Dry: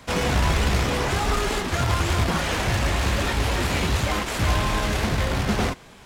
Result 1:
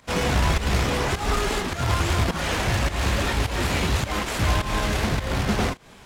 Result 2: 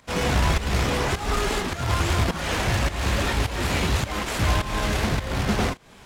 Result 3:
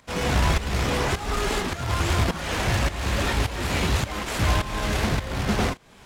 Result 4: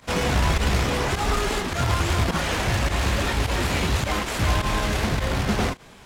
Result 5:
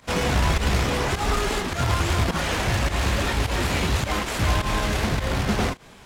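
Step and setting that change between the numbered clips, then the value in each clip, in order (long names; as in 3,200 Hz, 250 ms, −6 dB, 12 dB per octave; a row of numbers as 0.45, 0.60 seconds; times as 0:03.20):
fake sidechain pumping, release: 191, 303, 472, 62, 99 milliseconds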